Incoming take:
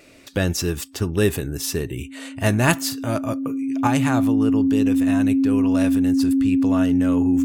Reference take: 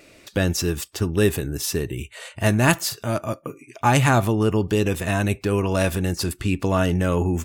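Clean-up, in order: band-stop 270 Hz, Q 30; gain correction +5.5 dB, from 3.87 s

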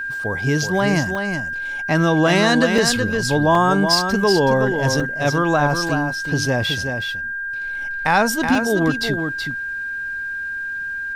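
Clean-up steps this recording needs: clip repair -6 dBFS; band-stop 1.6 kHz, Q 30; interpolate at 1.15/2.78/3.55/5.00/5.89/8.55 s, 3.1 ms; inverse comb 374 ms -6.5 dB

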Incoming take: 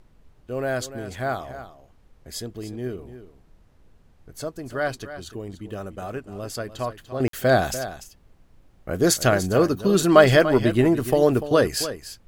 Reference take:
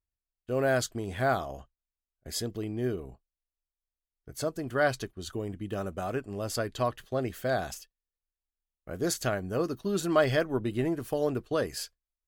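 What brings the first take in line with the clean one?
interpolate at 7.28 s, 53 ms; expander -46 dBFS, range -21 dB; inverse comb 293 ms -12.5 dB; gain correction -10.5 dB, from 7.20 s

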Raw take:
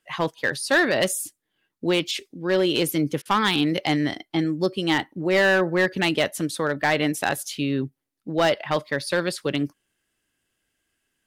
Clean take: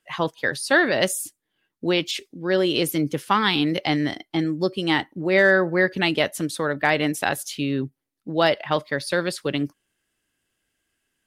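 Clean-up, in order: clip repair -13.5 dBFS; interpolate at 3.22 s, 33 ms

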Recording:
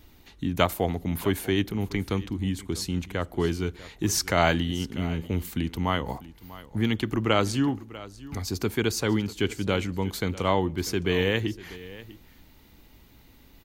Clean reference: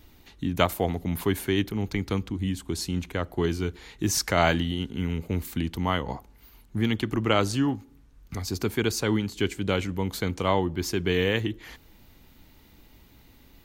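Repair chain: inverse comb 644 ms -18 dB

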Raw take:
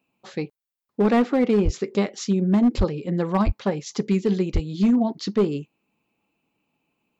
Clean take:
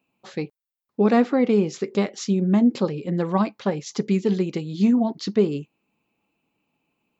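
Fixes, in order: clip repair -13 dBFS; de-plosive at 1.64/2.77/3.45/4.53 s

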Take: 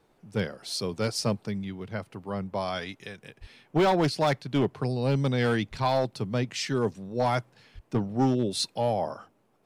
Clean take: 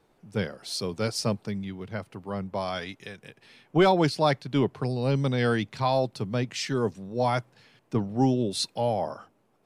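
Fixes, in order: clip repair -18 dBFS; 3.40–3.52 s: high-pass 140 Hz 24 dB/octave; 5.70–5.82 s: high-pass 140 Hz 24 dB/octave; 7.74–7.86 s: high-pass 140 Hz 24 dB/octave

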